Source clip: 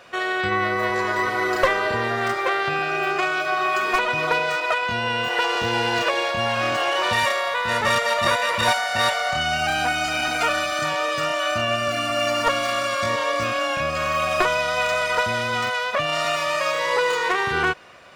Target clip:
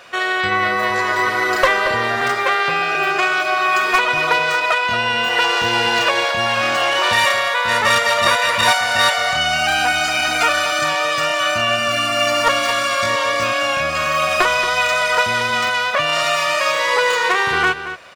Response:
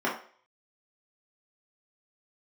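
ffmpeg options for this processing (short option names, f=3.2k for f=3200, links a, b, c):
-filter_complex "[0:a]asettb=1/sr,asplit=3[a][b][c];[a]atrim=end=2.214[d];[b]atrim=start=2.21:end=2.95,asetpts=PTS-STARTPTS,afade=t=in:d=0.004:c=qsin,afade=t=out:st=0.736:d=0.004:c=qsin,afreqshift=13[e];[c]atrim=start=2.946[f];[d][e]acrossfade=d=0.004:c1=hsin:c2=qsin[g];[g][f]acrossfade=d=0.004:c1=qsin:c2=hsin,tiltshelf=f=710:g=-3.5,asplit=2[h][i];[i]adelay=227.4,volume=-11dB,highshelf=f=4k:g=-5.12[j];[h][j]amix=inputs=2:normalize=0,volume=3.5dB"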